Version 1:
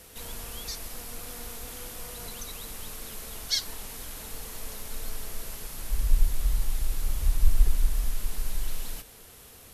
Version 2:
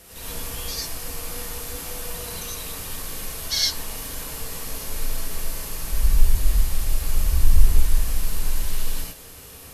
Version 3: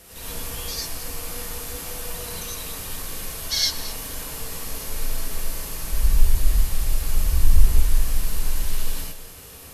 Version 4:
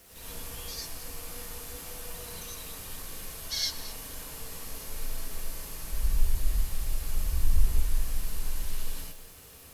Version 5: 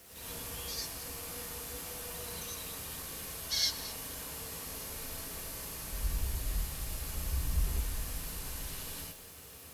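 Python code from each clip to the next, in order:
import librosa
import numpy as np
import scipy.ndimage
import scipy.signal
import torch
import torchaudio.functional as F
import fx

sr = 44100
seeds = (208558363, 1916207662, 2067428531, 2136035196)

y1 = fx.rev_gated(x, sr, seeds[0], gate_ms=130, shape='rising', drr_db=-5.0)
y1 = y1 * librosa.db_to_amplitude(1.0)
y2 = y1 + 10.0 ** (-15.5 / 20.0) * np.pad(y1, (int(220 * sr / 1000.0), 0))[:len(y1)]
y3 = fx.quant_dither(y2, sr, seeds[1], bits=8, dither='none')
y3 = y3 * librosa.db_to_amplitude(-8.5)
y4 = scipy.signal.sosfilt(scipy.signal.butter(2, 55.0, 'highpass', fs=sr, output='sos'), y3)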